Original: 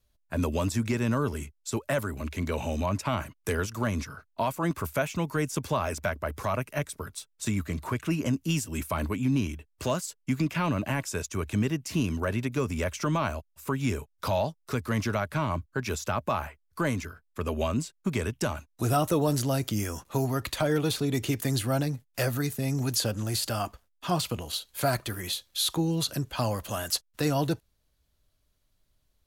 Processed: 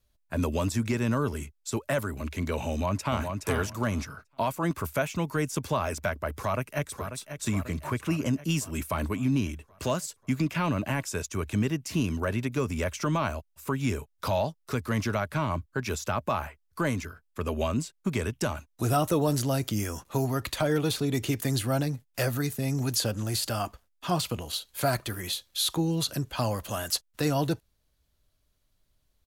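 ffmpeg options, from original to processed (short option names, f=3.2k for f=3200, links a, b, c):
-filter_complex "[0:a]asplit=2[a][b];[b]afade=t=in:st=2.69:d=0.01,afade=t=out:st=3.35:d=0.01,aecho=0:1:420|840|1260:0.562341|0.0843512|0.0126527[c];[a][c]amix=inputs=2:normalize=0,asplit=2[d][e];[e]afade=t=in:st=6.35:d=0.01,afade=t=out:st=7.09:d=0.01,aecho=0:1:540|1080|1620|2160|2700|3240|3780:0.334965|0.200979|0.120588|0.0723525|0.0434115|0.0260469|0.0156281[f];[d][f]amix=inputs=2:normalize=0"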